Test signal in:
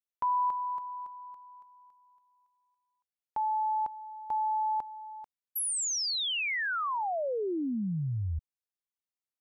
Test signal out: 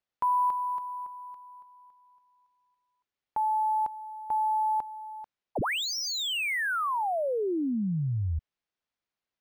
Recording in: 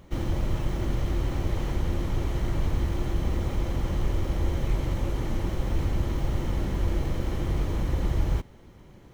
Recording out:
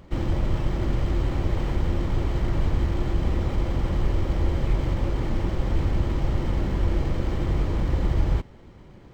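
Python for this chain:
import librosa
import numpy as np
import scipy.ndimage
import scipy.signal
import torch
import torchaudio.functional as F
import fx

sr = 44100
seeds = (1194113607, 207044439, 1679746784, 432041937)

y = np.interp(np.arange(len(x)), np.arange(len(x))[::4], x[::4])
y = F.gain(torch.from_numpy(y), 3.0).numpy()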